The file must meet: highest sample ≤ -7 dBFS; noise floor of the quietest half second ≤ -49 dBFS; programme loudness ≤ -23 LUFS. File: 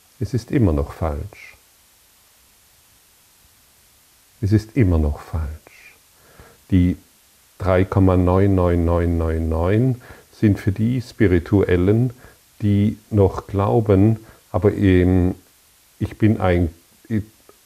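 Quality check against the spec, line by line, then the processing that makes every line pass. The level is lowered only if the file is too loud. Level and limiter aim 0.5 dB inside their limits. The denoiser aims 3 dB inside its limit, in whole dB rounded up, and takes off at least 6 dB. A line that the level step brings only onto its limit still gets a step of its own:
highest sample -2.5 dBFS: fail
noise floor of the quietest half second -54 dBFS: OK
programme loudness -19.0 LUFS: fail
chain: gain -4.5 dB; limiter -7.5 dBFS

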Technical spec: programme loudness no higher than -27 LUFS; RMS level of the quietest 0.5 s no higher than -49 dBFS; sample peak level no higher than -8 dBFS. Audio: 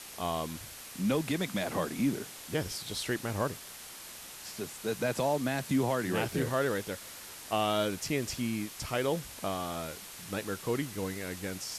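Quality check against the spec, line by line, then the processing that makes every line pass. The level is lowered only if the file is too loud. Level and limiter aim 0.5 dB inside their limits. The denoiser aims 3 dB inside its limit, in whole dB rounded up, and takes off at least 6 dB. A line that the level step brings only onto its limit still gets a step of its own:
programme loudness -33.5 LUFS: OK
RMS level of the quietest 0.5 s -47 dBFS: fail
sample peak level -17.5 dBFS: OK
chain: denoiser 6 dB, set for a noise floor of -47 dBFS

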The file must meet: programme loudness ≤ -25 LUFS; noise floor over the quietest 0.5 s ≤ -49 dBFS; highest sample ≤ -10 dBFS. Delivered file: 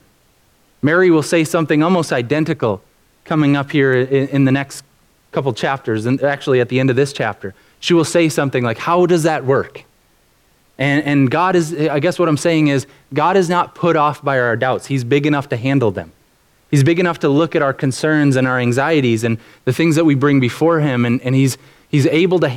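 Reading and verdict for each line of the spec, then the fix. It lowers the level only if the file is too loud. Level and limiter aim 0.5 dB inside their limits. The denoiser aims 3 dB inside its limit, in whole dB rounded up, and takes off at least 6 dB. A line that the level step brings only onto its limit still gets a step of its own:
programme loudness -15.5 LUFS: fail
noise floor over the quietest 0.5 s -56 dBFS: OK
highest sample -4.5 dBFS: fail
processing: gain -10 dB

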